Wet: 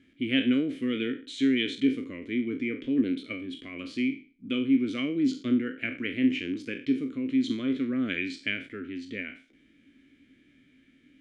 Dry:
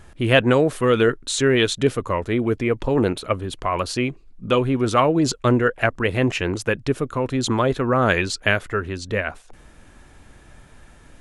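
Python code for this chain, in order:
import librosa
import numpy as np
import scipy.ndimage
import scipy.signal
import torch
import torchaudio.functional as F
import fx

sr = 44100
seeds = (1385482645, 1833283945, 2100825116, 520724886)

y = fx.spec_trails(x, sr, decay_s=0.38)
y = fx.vowel_filter(y, sr, vowel='i')
y = y * 10.0 ** (1.5 / 20.0)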